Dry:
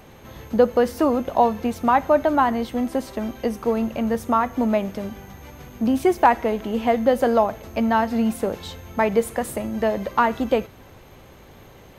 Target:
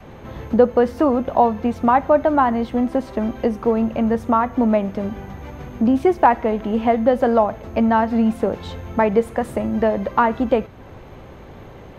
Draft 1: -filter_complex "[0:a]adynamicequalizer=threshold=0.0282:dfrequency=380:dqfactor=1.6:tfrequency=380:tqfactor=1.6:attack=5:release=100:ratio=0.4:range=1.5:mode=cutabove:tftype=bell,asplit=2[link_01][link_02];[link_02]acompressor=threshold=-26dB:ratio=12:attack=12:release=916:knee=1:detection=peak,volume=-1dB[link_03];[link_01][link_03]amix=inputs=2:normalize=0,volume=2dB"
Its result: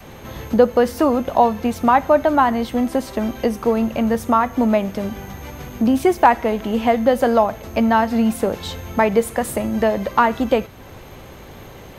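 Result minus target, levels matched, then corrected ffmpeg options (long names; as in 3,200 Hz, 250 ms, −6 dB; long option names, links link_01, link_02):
2,000 Hz band +3.0 dB
-filter_complex "[0:a]adynamicequalizer=threshold=0.0282:dfrequency=380:dqfactor=1.6:tfrequency=380:tqfactor=1.6:attack=5:release=100:ratio=0.4:range=1.5:mode=cutabove:tftype=bell,lowpass=frequency=1500:poles=1,asplit=2[link_01][link_02];[link_02]acompressor=threshold=-26dB:ratio=12:attack=12:release=916:knee=1:detection=peak,volume=-1dB[link_03];[link_01][link_03]amix=inputs=2:normalize=0,volume=2dB"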